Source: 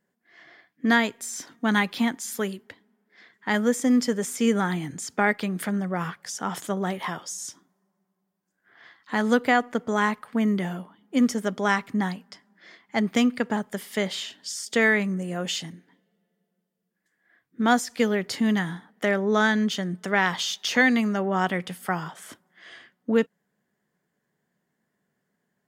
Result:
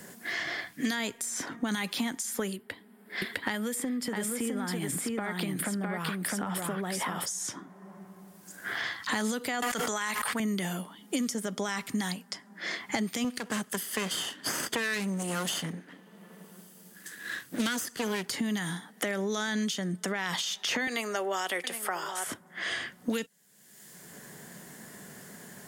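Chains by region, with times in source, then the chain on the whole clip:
2.56–7.26 bell 6300 Hz -15 dB 0.51 oct + compressor 5:1, threshold -32 dBFS + echo 0.657 s -3 dB
9.62–10.4 tilt shelf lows -9 dB, about 720 Hz + backwards sustainer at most 24 dB/s
13.24–18.31 minimum comb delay 0.64 ms + HPF 160 Hz
20.87–22.27 HPF 360 Hz 24 dB/oct + echo 0.768 s -17 dB
whole clip: bell 10000 Hz +12 dB 1.8 oct; limiter -18 dBFS; three-band squash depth 100%; gain -3 dB

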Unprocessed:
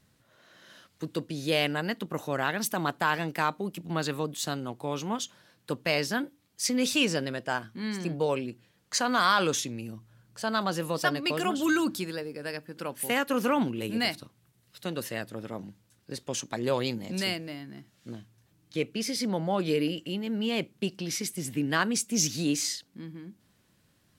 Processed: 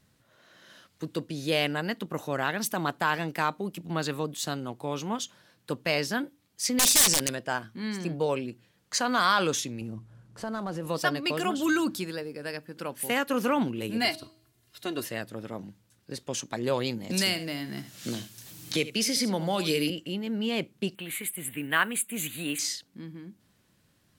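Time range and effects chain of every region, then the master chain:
6.79–7.35 wrapped overs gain 22 dB + bell 8800 Hz +13 dB 2.2 oct + notch 1300 Hz, Q 19
9.81–10.87 CVSD 64 kbps + tilt shelf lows +6.5 dB, about 1500 Hz + compressor 2.5:1, threshold -33 dBFS
14.01–15.06 comb 2.9 ms, depth 73% + de-hum 318.8 Hz, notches 32
17.1–19.9 high shelf 3000 Hz +10 dB + echo 74 ms -14.5 dB + three-band squash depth 70%
20.95–22.59 block floating point 7-bit + Butterworth band-stop 5400 Hz, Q 0.85 + tilt shelf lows -8 dB, about 930 Hz
whole clip: dry

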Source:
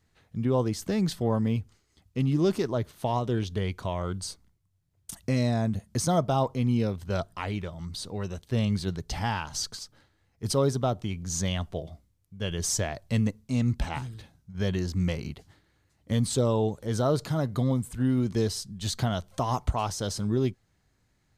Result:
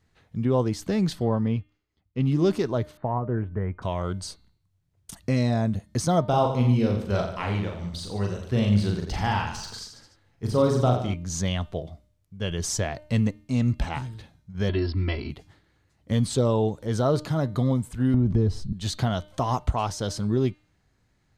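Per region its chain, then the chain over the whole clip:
1.25–2.26 air absorption 120 m + upward expander, over -48 dBFS
2.97–3.82 steep low-pass 1800 Hz + bell 450 Hz -3 dB 2.7 oct
6.27–11.14 de-esser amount 80% + reverse bouncing-ball echo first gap 40 ms, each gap 1.2×, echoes 5
14.69–15.3 brick-wall FIR low-pass 5600 Hz + comb 3 ms, depth 90%
18.14–18.73 tilt -4 dB/oct + compressor 4:1, threshold -20 dBFS
whole clip: high shelf 7300 Hz -8 dB; de-hum 303.2 Hz, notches 15; gain +2.5 dB

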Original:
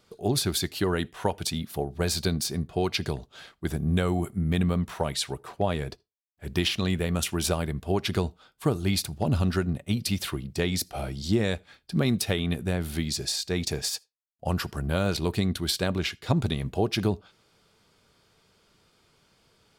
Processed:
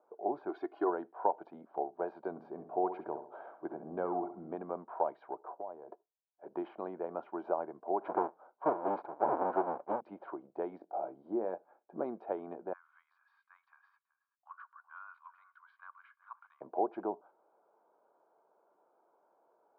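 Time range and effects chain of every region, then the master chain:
0.49–0.9 high shelf 2000 Hz +10 dB + comb 2.8 ms, depth 74%
2.3–4.55 low shelf 130 Hz +8.5 dB + upward compressor, threshold -30 dBFS + darkening echo 66 ms, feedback 37%, low-pass 4200 Hz, level -9.5 dB
5.48–5.89 bell 2300 Hz -10 dB 0.87 oct + compressor 3:1, threshold -37 dBFS
8.01–10.01 half-waves squared off + LPF 8800 Hz
10.78–12.04 high shelf 2100 Hz -8 dB + doubler 22 ms -11 dB
12.73–16.61 Chebyshev high-pass 1100 Hz, order 6 + high shelf 3300 Hz -11.5 dB + echo 0.376 s -18 dB
whole clip: elliptic band-pass 340–1100 Hz, stop band 80 dB; comb 1.3 ms, depth 53%; dynamic EQ 570 Hz, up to -4 dB, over -44 dBFS, Q 1.5

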